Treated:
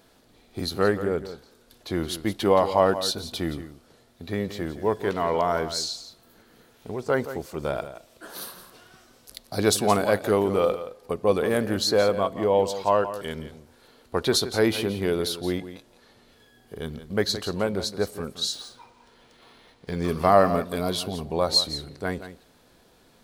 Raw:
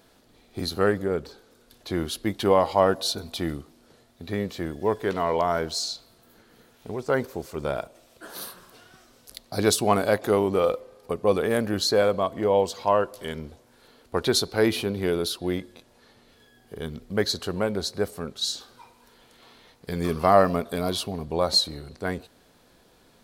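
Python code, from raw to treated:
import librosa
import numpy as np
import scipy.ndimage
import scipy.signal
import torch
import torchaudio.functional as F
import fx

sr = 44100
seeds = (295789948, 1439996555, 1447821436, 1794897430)

p1 = x + fx.echo_single(x, sr, ms=172, db=-12.5, dry=0)
y = fx.resample_linear(p1, sr, factor=3, at=(18.53, 20.08))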